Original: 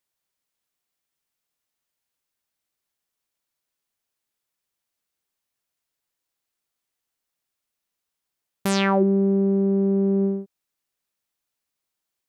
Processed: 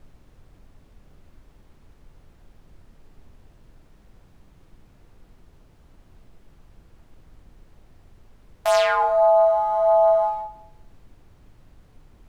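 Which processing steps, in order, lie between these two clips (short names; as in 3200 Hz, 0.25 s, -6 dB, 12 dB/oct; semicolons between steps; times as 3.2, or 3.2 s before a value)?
bell 260 Hz +8.5 dB 0.43 oct; sample leveller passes 1; chorus 1.5 Hz, delay 20 ms, depth 2.9 ms; frequency shift +460 Hz; added noise brown -49 dBFS; on a send: reverb RT60 0.80 s, pre-delay 33 ms, DRR 13.5 dB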